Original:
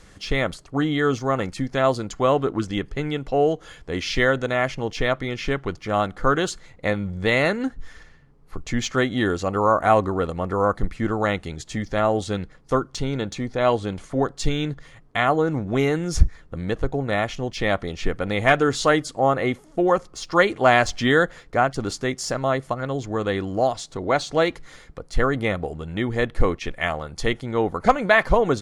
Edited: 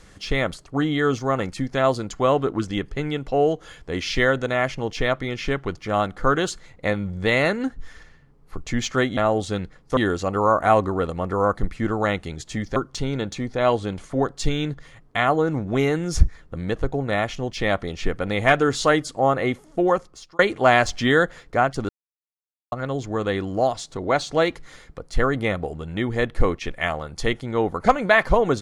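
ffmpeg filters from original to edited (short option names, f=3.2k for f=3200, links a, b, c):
-filter_complex "[0:a]asplit=7[a][b][c][d][e][f][g];[a]atrim=end=9.172[h];[b]atrim=start=11.958:end=12.762[i];[c]atrim=start=9.168:end=11.962[j];[d]atrim=start=12.758:end=20.39,asetpts=PTS-STARTPTS,afade=t=out:st=7.122:d=0.51[k];[e]atrim=start=20.39:end=21.89,asetpts=PTS-STARTPTS,afade=t=in:d=0.004:c=hsin,afade=t=out:st=1.496:d=0.004:c=hsin[l];[f]atrim=start=21.89:end=22.72,asetpts=PTS-STARTPTS,volume=0[m];[g]atrim=start=22.72,asetpts=PTS-STARTPTS,afade=t=in:d=0.004:c=hsin[n];[h][i]acrossfade=d=0.004:c1=hsin:c2=hsin[o];[o][j]acrossfade=d=0.004:c1=hsin:c2=hsin[p];[k][l][m][n]concat=n=4:v=0:a=1[q];[p][q]acrossfade=d=0.004:c1=hsin:c2=hsin"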